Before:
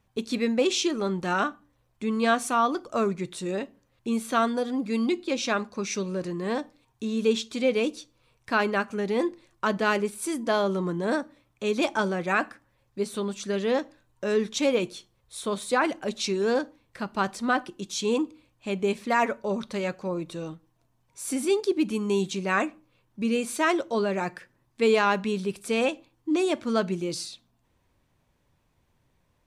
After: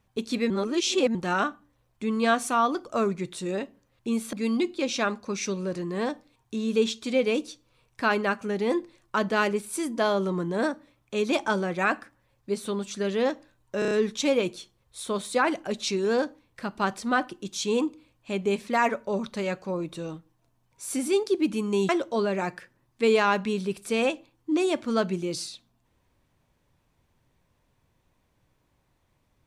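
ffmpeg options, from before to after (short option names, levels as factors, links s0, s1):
-filter_complex "[0:a]asplit=9[s0][s1][s2][s3][s4][s5][s6][s7][s8];[s0]atrim=end=0.502[s9];[s1]atrim=start=0.498:end=1.152,asetpts=PTS-STARTPTS,areverse[s10];[s2]atrim=start=1.148:end=4.332[s11];[s3]atrim=start=4.818:end=14.312[s12];[s4]atrim=start=14.278:end=14.312[s13];[s5]atrim=start=14.278:end=14.312[s14];[s6]atrim=start=14.278:end=14.312[s15];[s7]atrim=start=14.278:end=22.262[s16];[s8]atrim=start=23.678[s17];[s9][s10]acrossfade=d=0.004:c1=hsin:c2=hsin[s18];[s18][s11]acrossfade=d=0.004:c1=hsin:c2=hsin[s19];[s19][s12]acrossfade=d=0.004:c1=hsin:c2=hsin[s20];[s20][s13]acrossfade=d=0.004:c1=hsin:c2=hsin[s21];[s21][s14]acrossfade=d=0.004:c1=hsin:c2=hsin[s22];[s22][s15]acrossfade=d=0.004:c1=hsin:c2=hsin[s23];[s23][s16]acrossfade=d=0.004:c1=hsin:c2=hsin[s24];[s24][s17]acrossfade=d=0.004:c1=hsin:c2=hsin"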